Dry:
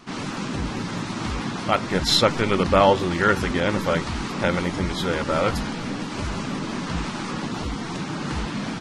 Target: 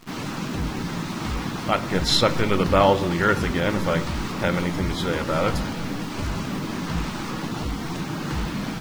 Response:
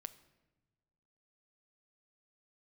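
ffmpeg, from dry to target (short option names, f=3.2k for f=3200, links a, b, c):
-filter_complex "[0:a]acrusher=bits=8:dc=4:mix=0:aa=0.000001,lowshelf=f=120:g=4[a];[1:a]atrim=start_sample=2205,asetrate=48510,aresample=44100[b];[a][b]afir=irnorm=-1:irlink=0,volume=4.5dB"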